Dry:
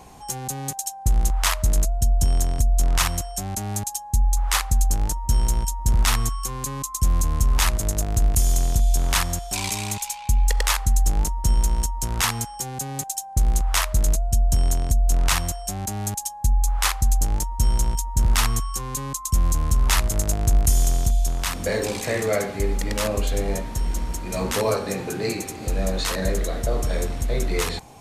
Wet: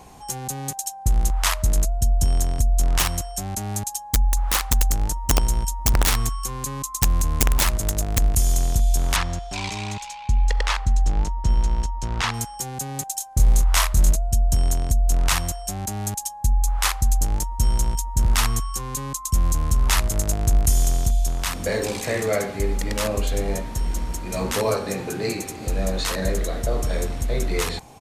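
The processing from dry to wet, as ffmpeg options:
-filter_complex "[0:a]asettb=1/sr,asplit=3[s0][s1][s2];[s0]atrim=end=2.994[s3];[s1]atrim=start=2.99:end=8.23,asetpts=PTS-STARTPTS,afade=t=in:d=0.004:c=qsin,afade=t=out:st=5.236:d=0.004:c=qsin,aeval=exprs='(mod(3.55*val(0)+1,2)-1)/3.55':c=same[s4];[s2]atrim=start=8.226[s5];[s3][s4]acrossfade=d=0.004:c1=hsin:c2=qsin[s6];[s6][s5]acrossfade=d=0.004:c1=qsin:c2=hsin,asettb=1/sr,asplit=3[s7][s8][s9];[s7]atrim=end=9.164[s10];[s8]atrim=start=9.16:end=12.34,asetpts=PTS-STARTPTS,afade=t=in:d=0.004:c=qsin,afade=t=out:st=3.176:d=0.004:c=qsin,lowpass=4400[s11];[s9]atrim=start=12.336[s12];[s10][s11]acrossfade=d=0.004:c1=hsin:c2=qsin[s13];[s13][s12]acrossfade=d=0.004:c1=qsin:c2=hsin,asplit=3[s14][s15][s16];[s14]afade=t=out:st=13.19:d=0.02[s17];[s15]asplit=2[s18][s19];[s19]adelay=25,volume=0.708[s20];[s18][s20]amix=inputs=2:normalize=0,afade=t=in:st=13.19:d=0.02,afade=t=out:st=14.1:d=0.02[s21];[s16]afade=t=in:st=14.1:d=0.02[s22];[s17][s21][s22]amix=inputs=3:normalize=0"

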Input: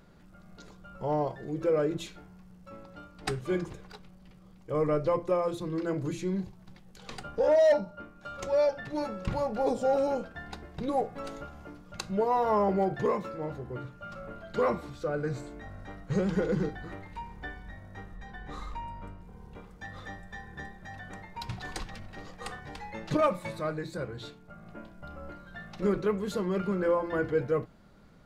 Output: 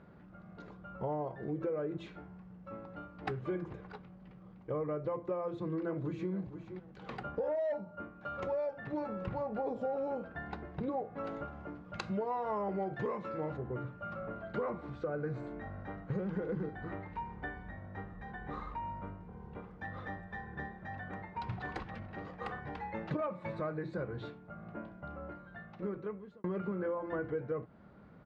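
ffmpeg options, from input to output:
-filter_complex "[0:a]asplit=2[s0][s1];[s1]afade=t=in:st=5.41:d=0.01,afade=t=out:st=6.32:d=0.01,aecho=0:1:470|940:0.188365|0.0282547[s2];[s0][s2]amix=inputs=2:normalize=0,asettb=1/sr,asplit=3[s3][s4][s5];[s3]atrim=end=11.934[s6];[s4]atrim=start=11.93:end=13.57,asetpts=PTS-STARTPTS,afade=t=in:d=0.004:c=qsin,afade=t=out:st=1.636:d=0.004:c=qsin,highshelf=f=2500:g=11[s7];[s5]atrim=start=13.566[s8];[s6][s7]acrossfade=d=0.004:c1=hsin:c2=qsin[s9];[s9][s8]acrossfade=d=0.004:c1=qsin:c2=hsin,asplit=2[s10][s11];[s10]atrim=end=26.44,asetpts=PTS-STARTPTS,afade=t=out:st=24.91:d=1.53[s12];[s11]atrim=start=26.44,asetpts=PTS-STARTPTS,afade=t=in:d=0.004:c=hsin[s13];[s12][s13]concat=n=2:v=0:a=1,lowpass=1900,acompressor=threshold=0.0178:ratio=6,highpass=69,volume=1.19"

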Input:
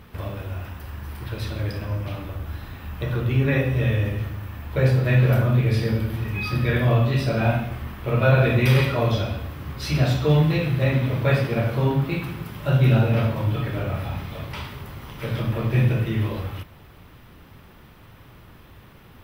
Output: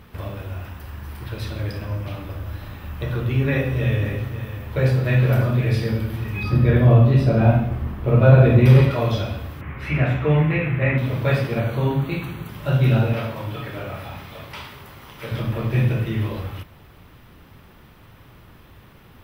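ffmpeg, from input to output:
-filter_complex "[0:a]asettb=1/sr,asplit=3[s0][s1][s2];[s0]atrim=end=1.754[s3];[s1]atrim=start=1.75:end=5.77,asetpts=PTS-STARTPTS,afade=t=in:d=0.004:c=qsin,afade=t=out:st=4.016:d=0.004:c=qsin,aecho=1:1:547:0.266,atrim=end_sample=177282[s4];[s2]atrim=start=5.766[s5];[s3][s4]acrossfade=d=0.004:c1=hsin:c2=qsin[s6];[s6][s5]acrossfade=d=0.004:c1=qsin:c2=hsin,asettb=1/sr,asplit=3[s7][s8][s9];[s7]atrim=end=6.434[s10];[s8]atrim=start=6.43:end=8.91,asetpts=PTS-STARTPTS,afade=t=in:d=0.004:c=qsin,afade=t=out:st=2.476:d=0.004:c=qsin,tiltshelf=f=1100:g=6.5[s11];[s9]atrim=start=8.906[s12];[s10][s11]acrossfade=d=0.004:c1=hsin:c2=qsin[s13];[s13][s12]acrossfade=d=0.004:c1=qsin:c2=hsin,asettb=1/sr,asplit=3[s14][s15][s16];[s14]atrim=end=9.614[s17];[s15]atrim=start=9.61:end=10.98,asetpts=PTS-STARTPTS,afade=t=in:d=0.004:c=qsin,afade=t=out:st=1.366:d=0.004:c=qsin,highshelf=f=3200:t=q:w=3:g=-13[s18];[s16]atrim=start=10.976[s19];[s17][s18]acrossfade=d=0.004:c1=hsin:c2=qsin[s20];[s20][s19]acrossfade=d=0.004:c1=qsin:c2=hsin,asettb=1/sr,asplit=3[s21][s22][s23];[s21]atrim=end=11.604[s24];[s22]atrim=start=11.6:end=12.49,asetpts=PTS-STARTPTS,afade=t=in:d=0.004:c=qsin,afade=t=out:st=0.886:d=0.004:c=qsin,asuperstop=centerf=5200:order=12:qfactor=4.8[s25];[s23]atrim=start=12.486[s26];[s24][s25]acrossfade=d=0.004:c1=hsin:c2=qsin[s27];[s27][s26]acrossfade=d=0.004:c1=qsin:c2=hsin,asettb=1/sr,asplit=3[s28][s29][s30];[s28]atrim=end=13.134[s31];[s29]atrim=start=13.13:end=15.32,asetpts=PTS-STARTPTS,afade=t=in:d=0.004:c=qsin,afade=t=out:st=2.186:d=0.004:c=qsin,lowshelf=f=270:g=-9[s32];[s30]atrim=start=15.316[s33];[s31][s32]acrossfade=d=0.004:c1=hsin:c2=qsin[s34];[s34][s33]acrossfade=d=0.004:c1=qsin:c2=hsin"

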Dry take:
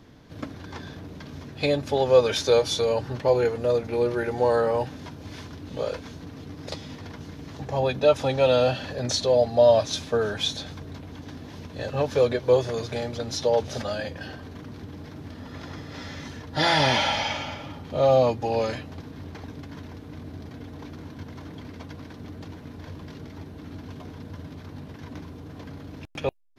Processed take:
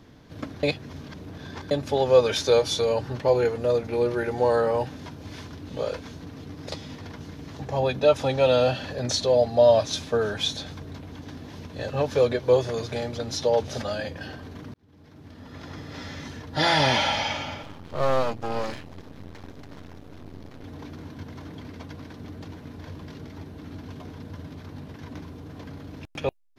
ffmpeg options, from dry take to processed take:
-filter_complex "[0:a]asettb=1/sr,asplit=3[s0][s1][s2];[s0]atrim=end=17.634[s3];[s1]atrim=start=17.63:end=20.64,asetpts=PTS-STARTPTS,afade=t=in:d=0.004:c=qsin,afade=t=out:st=3.006:d=0.004:c=qsin,aeval=exprs='max(val(0),0)':c=same[s4];[s2]atrim=start=20.636[s5];[s3][s4]acrossfade=d=0.004:c1=hsin:c2=qsin[s6];[s6][s5]acrossfade=d=0.004:c1=qsin:c2=hsin,asplit=4[s7][s8][s9][s10];[s7]atrim=end=0.632[s11];[s8]atrim=start=0.628:end=1.712,asetpts=PTS-STARTPTS,areverse[s12];[s9]atrim=start=1.708:end=14.74,asetpts=PTS-STARTPTS,afade=t=out:st=13.028:d=0.004:c=hsin[s13];[s10]atrim=start=14.74,asetpts=PTS-STARTPTS,afade=t=in:d=1.13[s14];[s11][s12]acrossfade=d=0.004:c1=hsin:c2=hsin[s15];[s13][s14]concat=n=2:v=0:a=1[s16];[s15][s16]acrossfade=d=0.004:c1=hsin:c2=hsin"

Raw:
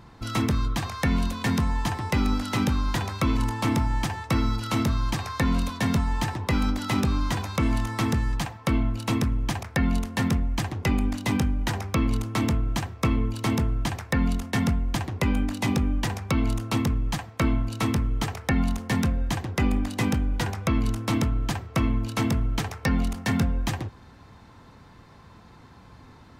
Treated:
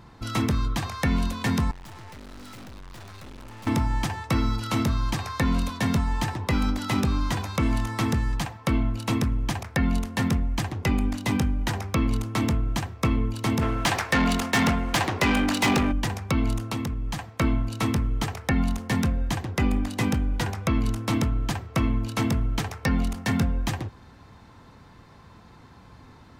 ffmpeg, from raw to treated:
-filter_complex "[0:a]asettb=1/sr,asplit=3[s0][s1][s2];[s0]atrim=end=1.714[s3];[s1]atrim=start=1.71:end=3.67,asetpts=PTS-STARTPTS,afade=t=in:d=0.004:c=qsin,afade=t=out:st=1.956:d=0.004:c=qsin,aeval=exprs='(tanh(126*val(0)+0.6)-tanh(0.6))/126':c=same[s4];[s2]atrim=start=3.666[s5];[s3][s4]acrossfade=d=0.004:c1=hsin:c2=qsin[s6];[s6][s5]acrossfade=d=0.004:c1=qsin:c2=hsin,asplit=3[s7][s8][s9];[s7]afade=t=out:st=13.61:d=0.02[s10];[s8]asplit=2[s11][s12];[s12]highpass=f=720:p=1,volume=12.6,asoftclip=type=tanh:threshold=0.211[s13];[s11][s13]amix=inputs=2:normalize=0,lowpass=f=6700:p=1,volume=0.501,afade=t=in:st=13.61:d=0.02,afade=t=out:st=15.91:d=0.02[s14];[s9]afade=t=in:st=15.91:d=0.02[s15];[s10][s14][s15]amix=inputs=3:normalize=0,asettb=1/sr,asplit=3[s16][s17][s18];[s16]atrim=end=16.604[s19];[s17]atrim=start=16.6:end=17.29,asetpts=PTS-STARTPTS,afade=t=in:d=0.004:c=qsin,afade=t=out:st=0.686:d=0.004:c=qsin,acompressor=threshold=0.0562:ratio=5:attack=3.2:release=140:knee=1:detection=peak[s20];[s18]atrim=start=17.286[s21];[s19][s20]acrossfade=d=0.004:c1=hsin:c2=qsin[s22];[s22][s21]acrossfade=d=0.004:c1=qsin:c2=hsin"

